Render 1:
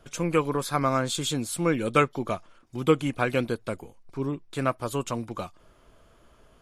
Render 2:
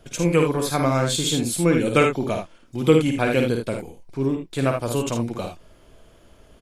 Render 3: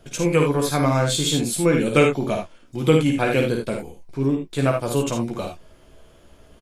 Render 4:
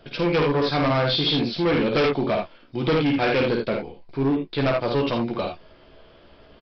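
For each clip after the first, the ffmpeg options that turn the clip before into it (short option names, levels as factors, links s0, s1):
-filter_complex "[0:a]equalizer=f=1200:t=o:w=0.78:g=-7.5,asplit=2[s0][s1];[s1]aecho=0:1:52|77:0.531|0.422[s2];[s0][s2]amix=inputs=2:normalize=0,volume=1.78"
-filter_complex "[0:a]asplit=2[s0][s1];[s1]adelay=14,volume=0.447[s2];[s0][s2]amix=inputs=2:normalize=0"
-af "lowshelf=f=180:g=-8,aresample=11025,asoftclip=type=hard:threshold=0.0891,aresample=44100,volume=1.5"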